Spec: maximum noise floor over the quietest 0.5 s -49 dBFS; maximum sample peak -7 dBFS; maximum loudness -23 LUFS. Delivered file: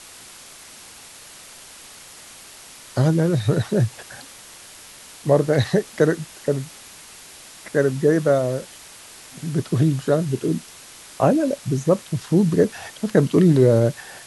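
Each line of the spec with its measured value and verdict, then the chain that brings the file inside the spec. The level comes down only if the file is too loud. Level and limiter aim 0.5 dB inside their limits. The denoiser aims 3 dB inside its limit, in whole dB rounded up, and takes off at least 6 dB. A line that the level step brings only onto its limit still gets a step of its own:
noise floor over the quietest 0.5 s -43 dBFS: fail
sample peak -4.0 dBFS: fail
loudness -20.5 LUFS: fail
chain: denoiser 6 dB, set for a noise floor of -43 dBFS; gain -3 dB; limiter -7.5 dBFS

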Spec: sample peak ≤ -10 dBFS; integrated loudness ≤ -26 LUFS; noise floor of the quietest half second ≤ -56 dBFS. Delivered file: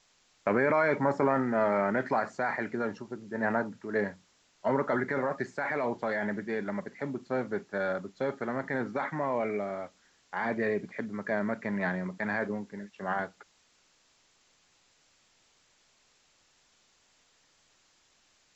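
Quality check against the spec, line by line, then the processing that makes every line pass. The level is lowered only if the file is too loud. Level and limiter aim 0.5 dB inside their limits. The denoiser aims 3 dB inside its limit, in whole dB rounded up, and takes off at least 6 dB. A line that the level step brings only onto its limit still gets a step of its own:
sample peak -14.5 dBFS: OK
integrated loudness -31.5 LUFS: OK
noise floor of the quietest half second -67 dBFS: OK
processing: none

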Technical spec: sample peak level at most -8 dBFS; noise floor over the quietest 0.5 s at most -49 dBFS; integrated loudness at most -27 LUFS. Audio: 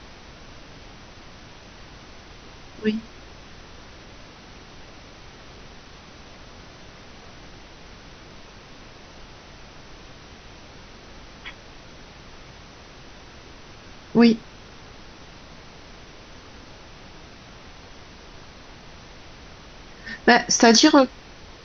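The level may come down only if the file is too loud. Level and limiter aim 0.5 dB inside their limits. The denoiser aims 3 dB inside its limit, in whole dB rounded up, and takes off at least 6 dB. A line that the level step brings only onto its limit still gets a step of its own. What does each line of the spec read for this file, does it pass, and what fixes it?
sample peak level -3.5 dBFS: fail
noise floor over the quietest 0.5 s -44 dBFS: fail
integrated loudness -18.5 LUFS: fail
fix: gain -9 dB

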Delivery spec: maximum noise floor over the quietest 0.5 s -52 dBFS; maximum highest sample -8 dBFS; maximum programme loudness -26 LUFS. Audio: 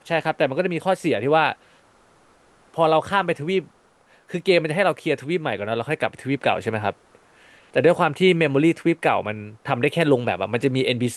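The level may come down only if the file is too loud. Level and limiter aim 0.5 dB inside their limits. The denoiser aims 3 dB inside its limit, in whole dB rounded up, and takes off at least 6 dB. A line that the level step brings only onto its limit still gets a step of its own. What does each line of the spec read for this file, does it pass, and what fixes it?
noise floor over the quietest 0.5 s -57 dBFS: OK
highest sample -5.0 dBFS: fail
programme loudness -21.5 LUFS: fail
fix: gain -5 dB

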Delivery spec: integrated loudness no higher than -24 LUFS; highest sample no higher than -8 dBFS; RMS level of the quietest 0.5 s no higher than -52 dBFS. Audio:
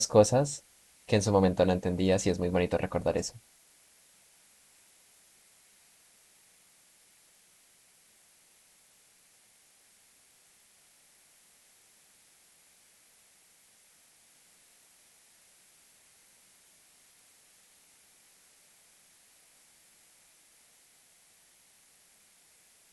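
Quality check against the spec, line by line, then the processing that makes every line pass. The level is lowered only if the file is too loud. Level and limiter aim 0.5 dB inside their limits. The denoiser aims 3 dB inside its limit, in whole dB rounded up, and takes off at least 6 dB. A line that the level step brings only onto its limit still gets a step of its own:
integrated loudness -28.0 LUFS: OK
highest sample -9.0 dBFS: OK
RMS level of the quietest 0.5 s -63 dBFS: OK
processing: none

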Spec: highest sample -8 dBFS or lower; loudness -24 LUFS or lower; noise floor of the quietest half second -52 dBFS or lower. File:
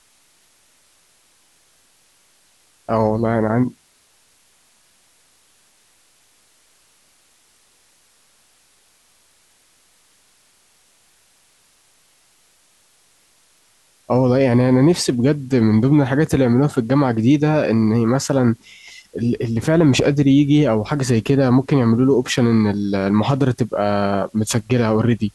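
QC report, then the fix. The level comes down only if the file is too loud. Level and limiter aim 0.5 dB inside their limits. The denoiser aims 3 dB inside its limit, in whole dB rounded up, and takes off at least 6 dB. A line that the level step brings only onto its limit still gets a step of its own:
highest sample -5.5 dBFS: fail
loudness -17.0 LUFS: fail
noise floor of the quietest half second -57 dBFS: OK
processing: gain -7.5 dB

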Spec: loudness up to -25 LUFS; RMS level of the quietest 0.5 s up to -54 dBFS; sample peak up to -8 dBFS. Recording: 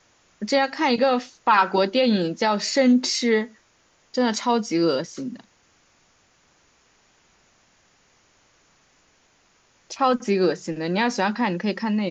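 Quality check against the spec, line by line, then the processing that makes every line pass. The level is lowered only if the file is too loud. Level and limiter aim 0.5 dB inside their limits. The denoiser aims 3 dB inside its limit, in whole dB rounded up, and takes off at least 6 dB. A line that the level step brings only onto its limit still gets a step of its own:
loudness -22.0 LUFS: fail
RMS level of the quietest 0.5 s -62 dBFS: OK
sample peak -7.5 dBFS: fail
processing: gain -3.5 dB

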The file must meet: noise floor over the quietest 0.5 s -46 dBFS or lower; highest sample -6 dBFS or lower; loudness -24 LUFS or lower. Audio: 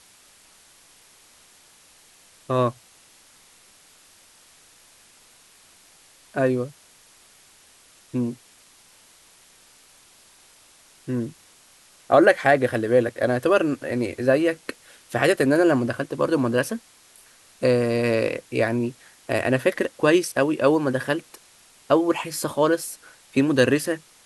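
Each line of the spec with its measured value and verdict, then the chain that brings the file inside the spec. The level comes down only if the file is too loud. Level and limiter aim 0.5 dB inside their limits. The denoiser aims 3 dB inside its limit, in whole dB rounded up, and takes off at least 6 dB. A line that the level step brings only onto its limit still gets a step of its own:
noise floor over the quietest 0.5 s -54 dBFS: OK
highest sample -4.5 dBFS: fail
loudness -22.5 LUFS: fail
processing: gain -2 dB

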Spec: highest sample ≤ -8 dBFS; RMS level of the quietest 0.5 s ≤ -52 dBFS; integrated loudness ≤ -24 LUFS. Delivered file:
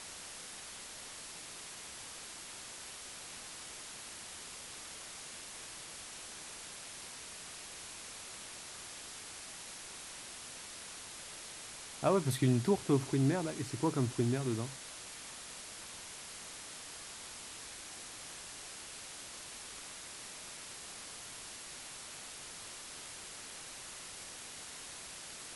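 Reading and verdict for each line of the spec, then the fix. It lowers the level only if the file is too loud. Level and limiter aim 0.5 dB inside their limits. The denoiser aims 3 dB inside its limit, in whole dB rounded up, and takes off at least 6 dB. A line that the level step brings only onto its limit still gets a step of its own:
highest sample -17.0 dBFS: OK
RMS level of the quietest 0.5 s -48 dBFS: fail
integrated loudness -40.5 LUFS: OK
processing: denoiser 7 dB, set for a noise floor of -48 dBFS

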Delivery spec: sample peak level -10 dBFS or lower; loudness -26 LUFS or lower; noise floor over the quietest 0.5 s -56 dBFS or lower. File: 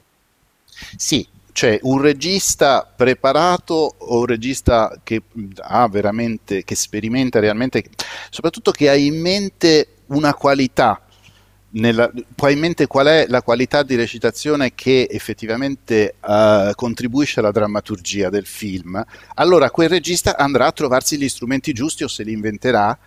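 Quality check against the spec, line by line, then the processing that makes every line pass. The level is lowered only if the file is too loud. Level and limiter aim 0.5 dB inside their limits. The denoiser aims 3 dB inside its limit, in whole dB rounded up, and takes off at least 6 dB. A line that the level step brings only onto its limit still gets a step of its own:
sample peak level -2.0 dBFS: fail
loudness -17.0 LUFS: fail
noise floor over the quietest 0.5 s -61 dBFS: OK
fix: gain -9.5 dB

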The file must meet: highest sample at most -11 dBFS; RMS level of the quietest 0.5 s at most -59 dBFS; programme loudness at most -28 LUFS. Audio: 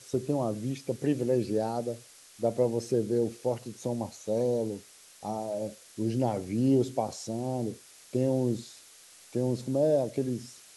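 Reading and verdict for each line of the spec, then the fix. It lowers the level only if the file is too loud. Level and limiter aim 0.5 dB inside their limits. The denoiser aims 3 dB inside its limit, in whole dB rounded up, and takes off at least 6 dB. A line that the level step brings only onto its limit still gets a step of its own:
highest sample -15.0 dBFS: OK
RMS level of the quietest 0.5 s -54 dBFS: fail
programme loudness -30.5 LUFS: OK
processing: denoiser 8 dB, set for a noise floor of -54 dBFS

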